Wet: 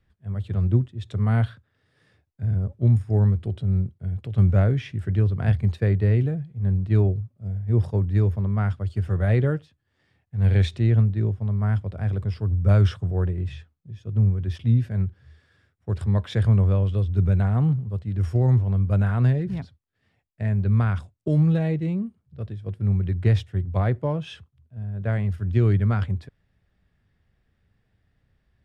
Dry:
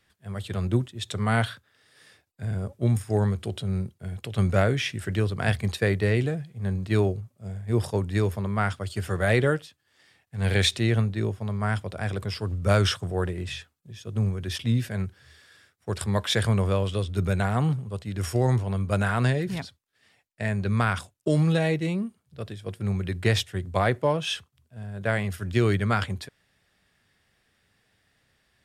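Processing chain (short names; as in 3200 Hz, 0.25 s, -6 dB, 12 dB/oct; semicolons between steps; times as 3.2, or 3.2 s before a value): RIAA curve playback; gain -6.5 dB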